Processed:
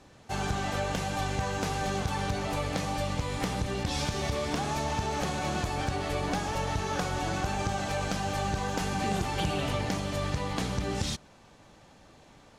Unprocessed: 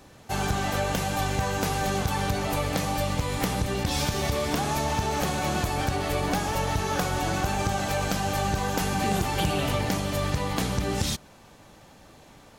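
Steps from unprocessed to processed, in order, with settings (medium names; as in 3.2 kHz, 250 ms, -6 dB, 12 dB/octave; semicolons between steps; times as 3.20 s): low-pass 8.4 kHz 12 dB/octave; trim -4 dB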